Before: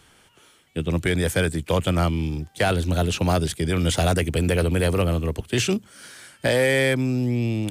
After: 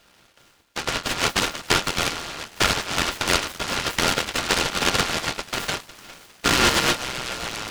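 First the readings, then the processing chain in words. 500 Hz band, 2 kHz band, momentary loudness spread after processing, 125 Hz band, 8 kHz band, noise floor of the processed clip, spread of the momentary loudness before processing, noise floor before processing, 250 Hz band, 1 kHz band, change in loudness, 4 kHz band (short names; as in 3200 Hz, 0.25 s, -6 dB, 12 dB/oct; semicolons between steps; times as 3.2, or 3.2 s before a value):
-6.5 dB, +3.5 dB, 10 LU, -12.0 dB, +6.5 dB, -57 dBFS, 7 LU, -56 dBFS, -7.0 dB, +5.0 dB, 0.0 dB, +8.0 dB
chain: flange 1.8 Hz, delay 9.4 ms, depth 4.7 ms, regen +39%; notches 60/120/180/240 Hz; in parallel at -1 dB: compressor, threshold -31 dBFS, peak gain reduction 12 dB; on the sum: band shelf 660 Hz +11.5 dB; full-wave rectifier; ring modulator 1400 Hz; on a send: thinning echo 0.204 s, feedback 83%, high-pass 1100 Hz, level -16.5 dB; on the sum: noise-modulated delay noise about 1400 Hz, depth 0.18 ms; gain -4 dB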